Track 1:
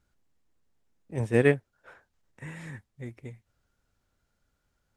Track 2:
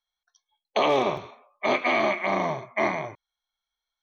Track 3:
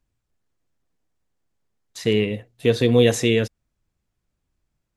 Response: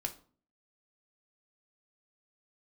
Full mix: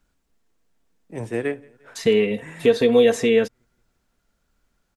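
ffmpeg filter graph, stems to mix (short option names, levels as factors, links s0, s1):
-filter_complex "[0:a]highpass=160,acompressor=threshold=0.0316:ratio=2,volume=1.06,asplit=3[s0][s1][s2];[s1]volume=0.501[s3];[s2]volume=0.0668[s4];[2:a]aecho=1:1:4.4:0.72,volume=1.33[s5];[3:a]atrim=start_sample=2205[s6];[s3][s6]afir=irnorm=-1:irlink=0[s7];[s4]aecho=0:1:175|350|525|700|875|1050|1225|1400:1|0.56|0.314|0.176|0.0983|0.0551|0.0308|0.0173[s8];[s0][s5][s7][s8]amix=inputs=4:normalize=0,acrossover=split=410|2000[s9][s10][s11];[s9]acompressor=threshold=0.0708:ratio=4[s12];[s10]acompressor=threshold=0.224:ratio=4[s13];[s11]acompressor=threshold=0.0224:ratio=4[s14];[s12][s13][s14]amix=inputs=3:normalize=0"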